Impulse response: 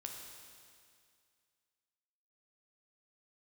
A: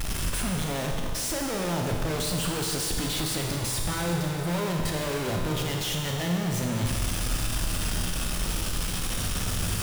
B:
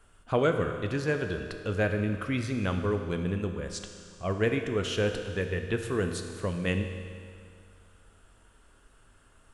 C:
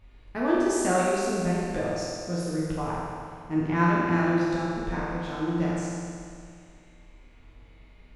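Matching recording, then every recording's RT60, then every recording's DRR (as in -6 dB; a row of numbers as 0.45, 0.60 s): A; 2.2, 2.2, 2.2 s; 1.0, 5.5, -7.0 dB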